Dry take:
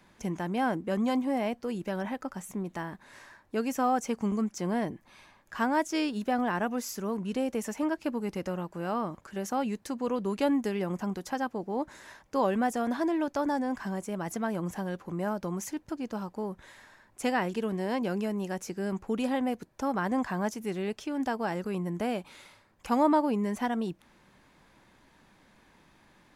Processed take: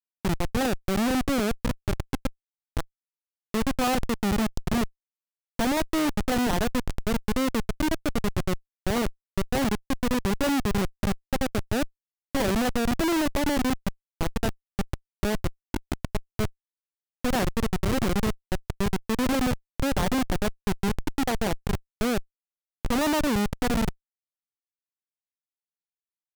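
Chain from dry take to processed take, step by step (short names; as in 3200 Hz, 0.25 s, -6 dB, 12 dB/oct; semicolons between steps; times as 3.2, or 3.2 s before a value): Schmitt trigger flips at -27.5 dBFS; gain +8.5 dB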